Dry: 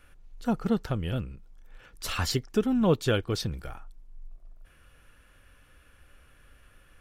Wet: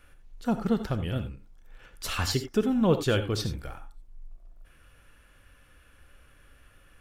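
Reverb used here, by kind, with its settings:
reverb whose tail is shaped and stops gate 110 ms rising, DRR 9 dB

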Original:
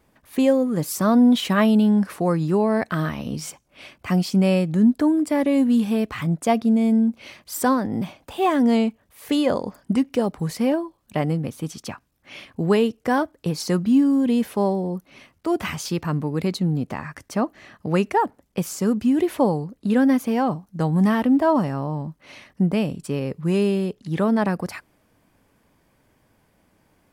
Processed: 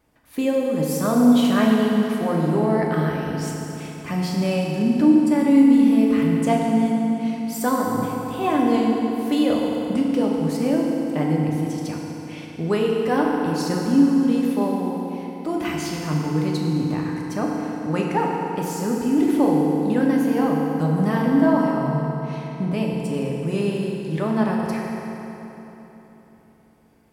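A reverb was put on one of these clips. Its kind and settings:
feedback delay network reverb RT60 3.7 s, high-frequency decay 0.7×, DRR −2.5 dB
level −4.5 dB

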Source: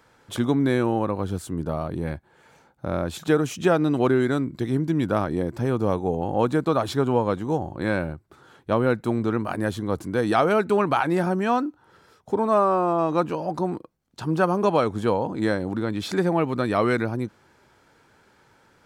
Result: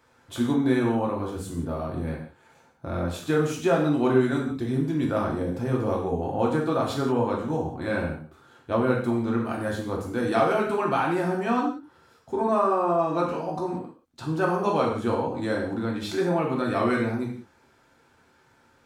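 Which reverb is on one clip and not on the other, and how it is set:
reverb whose tail is shaped and stops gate 210 ms falling, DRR −2.5 dB
level −6.5 dB

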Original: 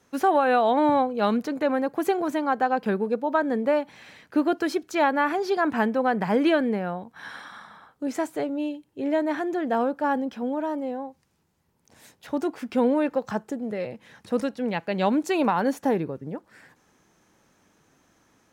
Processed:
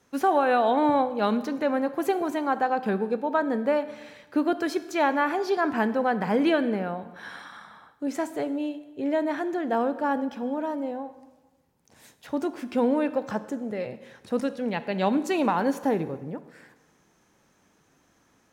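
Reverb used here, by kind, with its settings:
dense smooth reverb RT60 1.2 s, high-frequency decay 0.85×, DRR 12 dB
level −1.5 dB

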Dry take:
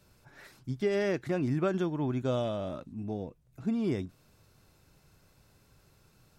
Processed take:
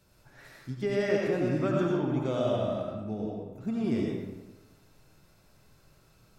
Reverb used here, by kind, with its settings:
comb and all-pass reverb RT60 1.1 s, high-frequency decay 0.7×, pre-delay 50 ms, DRR −2.5 dB
level −2 dB

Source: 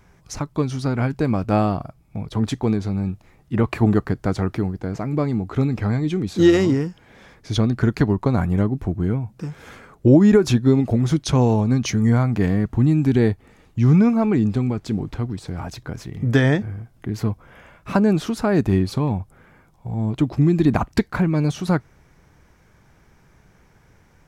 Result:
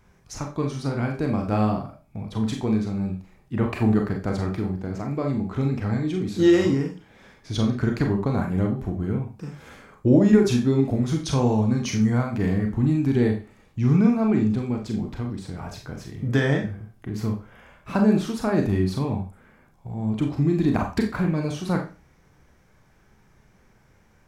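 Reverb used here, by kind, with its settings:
four-comb reverb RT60 0.32 s, combs from 29 ms, DRR 2 dB
level −5.5 dB

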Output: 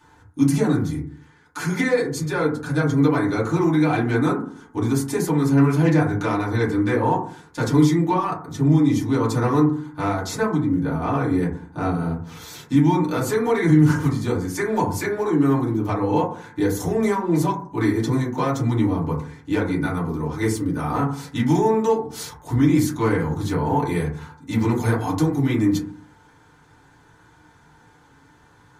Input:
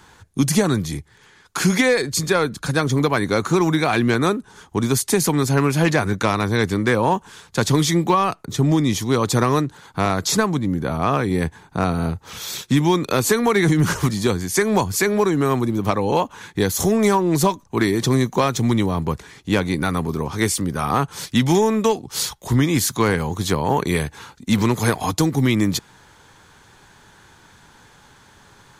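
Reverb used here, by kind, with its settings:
feedback delay network reverb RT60 0.49 s, low-frequency decay 1.35×, high-frequency decay 0.25×, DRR −7.5 dB
level −13 dB

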